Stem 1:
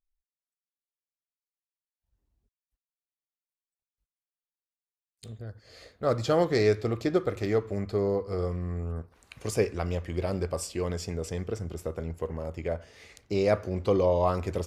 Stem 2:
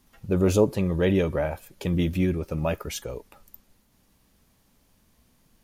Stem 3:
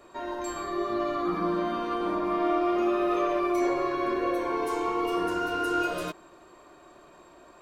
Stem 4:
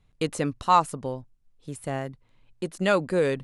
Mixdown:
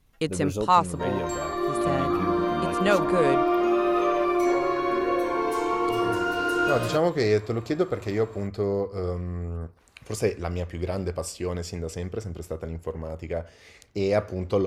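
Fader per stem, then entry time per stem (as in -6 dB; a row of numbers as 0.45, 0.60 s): +1.0, -9.0, +3.0, 0.0 dB; 0.65, 0.00, 0.85, 0.00 s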